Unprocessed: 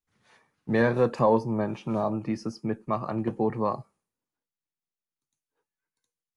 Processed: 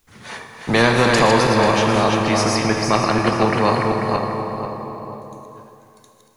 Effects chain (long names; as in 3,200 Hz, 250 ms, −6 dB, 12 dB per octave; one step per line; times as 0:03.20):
feedback delay that plays each chunk backwards 245 ms, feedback 43%, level −5 dB
dense smooth reverb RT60 2.6 s, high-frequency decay 1×, DRR 6 dB
every bin compressed towards the loudest bin 2 to 1
level +7.5 dB